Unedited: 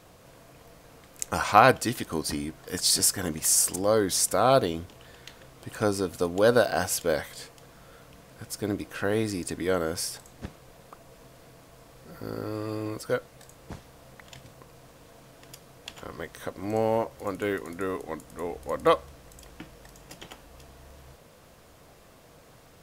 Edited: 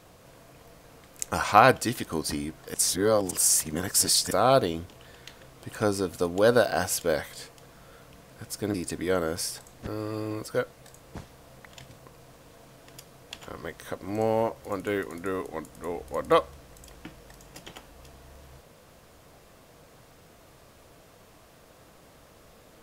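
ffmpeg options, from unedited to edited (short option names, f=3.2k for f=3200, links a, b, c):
-filter_complex "[0:a]asplit=5[a][b][c][d][e];[a]atrim=end=2.742[f];[b]atrim=start=2.738:end=4.312,asetpts=PTS-STARTPTS,areverse[g];[c]atrim=start=4.308:end=8.742[h];[d]atrim=start=9.328:end=10.462[i];[e]atrim=start=12.418[j];[f][g]acrossfade=d=0.004:c1=hsin:c2=hsin[k];[k][h]acrossfade=d=0.004:c1=hsin:c2=hsin[l];[l][i]acrossfade=d=0.004:c1=hsin:c2=hsin[m];[m][j]acrossfade=d=0.004:c1=hsin:c2=hsin"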